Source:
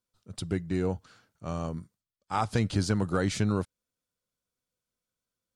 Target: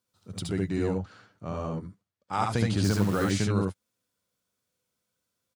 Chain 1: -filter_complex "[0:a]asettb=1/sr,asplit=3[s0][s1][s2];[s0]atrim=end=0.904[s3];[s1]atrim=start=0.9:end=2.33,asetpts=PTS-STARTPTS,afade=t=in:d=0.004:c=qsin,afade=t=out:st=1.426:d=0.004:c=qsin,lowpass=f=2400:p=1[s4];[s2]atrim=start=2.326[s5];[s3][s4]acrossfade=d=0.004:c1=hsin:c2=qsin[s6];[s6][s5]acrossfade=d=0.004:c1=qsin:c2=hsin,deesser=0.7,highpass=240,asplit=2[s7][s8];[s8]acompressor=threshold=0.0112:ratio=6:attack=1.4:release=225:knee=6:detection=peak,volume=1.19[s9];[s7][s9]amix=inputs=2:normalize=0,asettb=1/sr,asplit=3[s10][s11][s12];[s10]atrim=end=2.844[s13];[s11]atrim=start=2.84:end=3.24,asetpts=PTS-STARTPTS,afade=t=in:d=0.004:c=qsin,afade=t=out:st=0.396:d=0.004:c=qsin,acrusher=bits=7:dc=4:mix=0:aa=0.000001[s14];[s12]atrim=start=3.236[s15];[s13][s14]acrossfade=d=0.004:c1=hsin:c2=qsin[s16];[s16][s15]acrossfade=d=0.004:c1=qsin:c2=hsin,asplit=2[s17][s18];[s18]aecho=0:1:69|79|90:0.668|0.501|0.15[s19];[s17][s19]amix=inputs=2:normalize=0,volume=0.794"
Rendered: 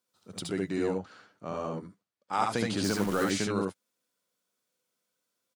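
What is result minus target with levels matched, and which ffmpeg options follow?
125 Hz band -7.5 dB
-filter_complex "[0:a]asettb=1/sr,asplit=3[s0][s1][s2];[s0]atrim=end=0.904[s3];[s1]atrim=start=0.9:end=2.33,asetpts=PTS-STARTPTS,afade=t=in:d=0.004:c=qsin,afade=t=out:st=1.426:d=0.004:c=qsin,lowpass=f=2400:p=1[s4];[s2]atrim=start=2.326[s5];[s3][s4]acrossfade=d=0.004:c1=hsin:c2=qsin[s6];[s6][s5]acrossfade=d=0.004:c1=qsin:c2=hsin,deesser=0.7,highpass=78,asplit=2[s7][s8];[s8]acompressor=threshold=0.0112:ratio=6:attack=1.4:release=225:knee=6:detection=peak,volume=1.19[s9];[s7][s9]amix=inputs=2:normalize=0,asettb=1/sr,asplit=3[s10][s11][s12];[s10]atrim=end=2.844[s13];[s11]atrim=start=2.84:end=3.24,asetpts=PTS-STARTPTS,afade=t=in:d=0.004:c=qsin,afade=t=out:st=0.396:d=0.004:c=qsin,acrusher=bits=7:dc=4:mix=0:aa=0.000001[s14];[s12]atrim=start=3.236[s15];[s13][s14]acrossfade=d=0.004:c1=hsin:c2=qsin[s16];[s16][s15]acrossfade=d=0.004:c1=qsin:c2=hsin,asplit=2[s17][s18];[s18]aecho=0:1:69|79|90:0.668|0.501|0.15[s19];[s17][s19]amix=inputs=2:normalize=0,volume=0.794"

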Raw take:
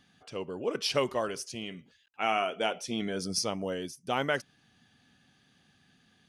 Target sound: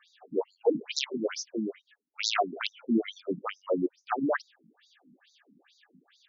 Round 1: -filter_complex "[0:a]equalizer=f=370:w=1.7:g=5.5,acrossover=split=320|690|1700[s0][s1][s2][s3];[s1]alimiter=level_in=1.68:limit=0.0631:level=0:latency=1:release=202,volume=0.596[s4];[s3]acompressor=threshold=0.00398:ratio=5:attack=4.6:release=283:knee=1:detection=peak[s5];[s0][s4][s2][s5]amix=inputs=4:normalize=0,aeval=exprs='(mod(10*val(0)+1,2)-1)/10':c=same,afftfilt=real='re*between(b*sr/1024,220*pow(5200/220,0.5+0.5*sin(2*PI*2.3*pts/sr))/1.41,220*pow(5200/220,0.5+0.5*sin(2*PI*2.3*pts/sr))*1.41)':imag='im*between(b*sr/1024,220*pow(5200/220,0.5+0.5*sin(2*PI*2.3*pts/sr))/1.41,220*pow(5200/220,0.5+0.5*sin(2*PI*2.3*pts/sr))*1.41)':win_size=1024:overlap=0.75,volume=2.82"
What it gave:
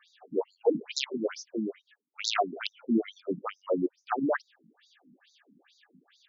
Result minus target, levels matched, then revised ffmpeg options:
compression: peak gain reduction +7 dB
-filter_complex "[0:a]equalizer=f=370:w=1.7:g=5.5,acrossover=split=320|690|1700[s0][s1][s2][s3];[s1]alimiter=level_in=1.68:limit=0.0631:level=0:latency=1:release=202,volume=0.596[s4];[s3]acompressor=threshold=0.0106:ratio=5:attack=4.6:release=283:knee=1:detection=peak[s5];[s0][s4][s2][s5]amix=inputs=4:normalize=0,aeval=exprs='(mod(10*val(0)+1,2)-1)/10':c=same,afftfilt=real='re*between(b*sr/1024,220*pow(5200/220,0.5+0.5*sin(2*PI*2.3*pts/sr))/1.41,220*pow(5200/220,0.5+0.5*sin(2*PI*2.3*pts/sr))*1.41)':imag='im*between(b*sr/1024,220*pow(5200/220,0.5+0.5*sin(2*PI*2.3*pts/sr))/1.41,220*pow(5200/220,0.5+0.5*sin(2*PI*2.3*pts/sr))*1.41)':win_size=1024:overlap=0.75,volume=2.82"

